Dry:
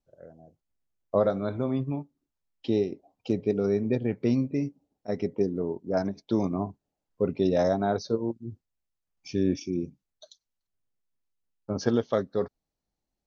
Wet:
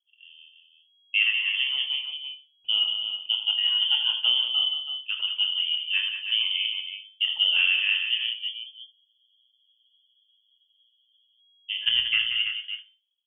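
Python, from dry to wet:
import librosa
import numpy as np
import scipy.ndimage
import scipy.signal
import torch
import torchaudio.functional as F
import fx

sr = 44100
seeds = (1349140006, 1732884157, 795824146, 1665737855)

y = fx.env_lowpass(x, sr, base_hz=380.0, full_db=-20.0)
y = fx.hum_notches(y, sr, base_hz=50, count=4)
y = fx.rev_schroeder(y, sr, rt60_s=0.33, comb_ms=28, drr_db=13.5)
y = fx.wow_flutter(y, sr, seeds[0], rate_hz=2.1, depth_cents=22.0)
y = fx.doubler(y, sr, ms=25.0, db=-9)
y = fx.echo_multitap(y, sr, ms=(80, 182, 328), db=(-9.5, -8.5, -8.0))
y = fx.freq_invert(y, sr, carrier_hz=3300)
y = fx.spec_freeze(y, sr, seeds[1], at_s=8.93, hold_s=2.45)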